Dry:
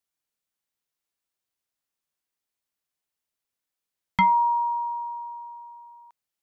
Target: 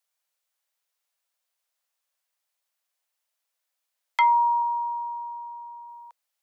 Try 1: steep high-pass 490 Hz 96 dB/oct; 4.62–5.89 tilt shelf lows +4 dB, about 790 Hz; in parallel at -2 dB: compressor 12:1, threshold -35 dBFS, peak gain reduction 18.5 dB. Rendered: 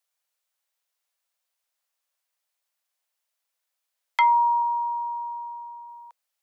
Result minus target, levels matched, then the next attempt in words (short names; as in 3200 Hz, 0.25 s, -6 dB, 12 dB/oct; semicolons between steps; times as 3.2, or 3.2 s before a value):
compressor: peak gain reduction -9.5 dB
steep high-pass 490 Hz 96 dB/oct; 4.62–5.89 tilt shelf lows +4 dB, about 790 Hz; in parallel at -2 dB: compressor 12:1, threshold -45.5 dBFS, peak gain reduction 28 dB